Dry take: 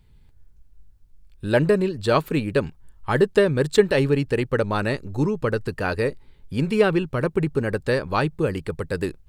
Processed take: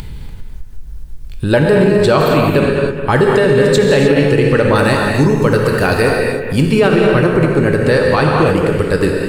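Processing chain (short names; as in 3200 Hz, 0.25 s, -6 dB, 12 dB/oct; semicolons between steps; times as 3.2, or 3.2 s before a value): 4.75–6.67 high shelf 6500 Hz +11 dB; analogue delay 0.207 s, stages 4096, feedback 33%, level -10 dB; non-linear reverb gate 0.33 s flat, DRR 1 dB; upward compressor, threshold -23 dBFS; maximiser +11.5 dB; gain -1.5 dB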